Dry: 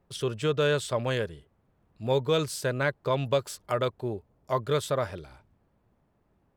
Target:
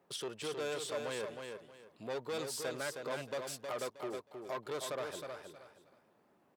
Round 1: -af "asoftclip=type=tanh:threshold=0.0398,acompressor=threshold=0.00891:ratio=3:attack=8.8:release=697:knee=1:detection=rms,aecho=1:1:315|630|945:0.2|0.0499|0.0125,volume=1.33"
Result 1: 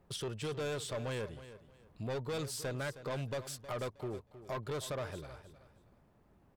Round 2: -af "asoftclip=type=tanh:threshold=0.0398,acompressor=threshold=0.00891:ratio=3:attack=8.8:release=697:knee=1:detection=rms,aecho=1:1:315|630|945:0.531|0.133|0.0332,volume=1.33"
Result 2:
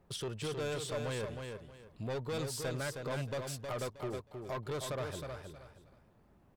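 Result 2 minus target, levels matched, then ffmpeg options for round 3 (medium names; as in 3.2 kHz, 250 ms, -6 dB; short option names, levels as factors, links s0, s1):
250 Hz band +2.5 dB
-af "asoftclip=type=tanh:threshold=0.0398,acompressor=threshold=0.00891:ratio=3:attack=8.8:release=697:knee=1:detection=rms,highpass=290,aecho=1:1:315|630|945:0.531|0.133|0.0332,volume=1.33"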